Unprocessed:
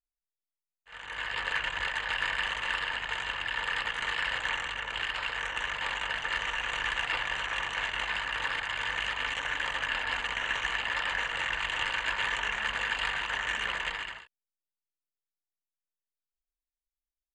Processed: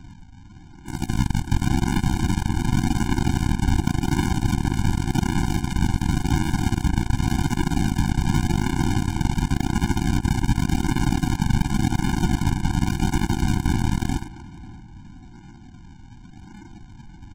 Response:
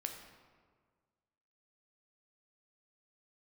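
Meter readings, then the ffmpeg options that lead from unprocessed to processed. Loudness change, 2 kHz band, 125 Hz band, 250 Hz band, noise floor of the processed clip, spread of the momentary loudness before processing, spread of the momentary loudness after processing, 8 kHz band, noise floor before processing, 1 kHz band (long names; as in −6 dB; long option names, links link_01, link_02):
+7.5 dB, −5.5 dB, +31.0 dB, +32.5 dB, −44 dBFS, 3 LU, 3 LU, +12.5 dB, below −85 dBFS, +4.5 dB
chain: -filter_complex "[0:a]aeval=exprs='val(0)+0.5*0.015*sgn(val(0))':channel_layout=same,highpass=frequency=45:poles=1,highshelf=frequency=2000:gain=-7,acrossover=split=180|1600[link_01][link_02][link_03];[link_01]acompressor=threshold=-56dB:ratio=4[link_04];[link_02]acompressor=threshold=-39dB:ratio=4[link_05];[link_03]acompressor=threshold=-48dB:ratio=4[link_06];[link_04][link_05][link_06]amix=inputs=3:normalize=0,aeval=exprs='val(0)+0.000708*(sin(2*PI*60*n/s)+sin(2*PI*2*60*n/s)/2+sin(2*PI*3*60*n/s)/3+sin(2*PI*4*60*n/s)/4+sin(2*PI*5*60*n/s)/5)':channel_layout=same,lowpass=frequency=2400:width_type=q:width=0.5098,lowpass=frequency=2400:width_type=q:width=0.6013,lowpass=frequency=2400:width_type=q:width=0.9,lowpass=frequency=2400:width_type=q:width=2.563,afreqshift=-2800,aresample=16000,acrusher=samples=36:mix=1:aa=0.000001:lfo=1:lforange=21.6:lforate=0.89,aresample=44100,asplit=2[link_07][link_08];[link_08]adelay=523,lowpass=frequency=2000:poles=1,volume=-9dB,asplit=2[link_09][link_10];[link_10]adelay=523,lowpass=frequency=2000:poles=1,volume=0.36,asplit=2[link_11][link_12];[link_12]adelay=523,lowpass=frequency=2000:poles=1,volume=0.36,asplit=2[link_13][link_14];[link_14]adelay=523,lowpass=frequency=2000:poles=1,volume=0.36[link_15];[link_07][link_09][link_11][link_13][link_15]amix=inputs=5:normalize=0,aeval=exprs='0.0473*(cos(1*acos(clip(val(0)/0.0473,-1,1)))-cos(1*PI/2))+0.00841*(cos(7*acos(clip(val(0)/0.0473,-1,1)))-cos(7*PI/2))':channel_layout=same,alimiter=level_in=36dB:limit=-1dB:release=50:level=0:latency=1,afftfilt=real='re*eq(mod(floor(b*sr/1024/350),2),0)':imag='im*eq(mod(floor(b*sr/1024/350),2),0)':win_size=1024:overlap=0.75,volume=-8dB"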